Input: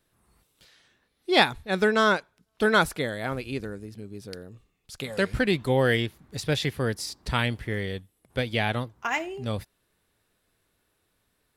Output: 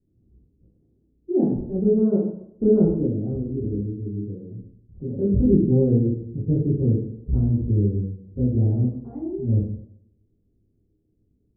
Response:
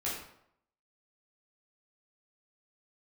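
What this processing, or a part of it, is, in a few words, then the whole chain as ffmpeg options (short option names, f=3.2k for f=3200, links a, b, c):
next room: -filter_complex "[0:a]lowpass=f=330:w=0.5412,lowpass=f=330:w=1.3066[a];[1:a]atrim=start_sample=2205[b];[a][b]afir=irnorm=-1:irlink=0,asettb=1/sr,asplit=3[c][d][e];[c]atrim=end=2.134[f];[d]atrim=start=2.13:end=3.07,asetpts=PTS-STARTPTS,afade=t=in:d=0.004:c=qsin,afade=t=out:st=0.936:d=0.004:c=qsin,equalizer=f=610:w=0.72:g=4.5[g];[e]atrim=start=3.066[h];[f][g]acrossfade=d=0.004:c1=hsin:c2=qsin[i];[i][h]acrossfade=d=0.004:c1=qsin:c2=hsin,volume=5.5dB"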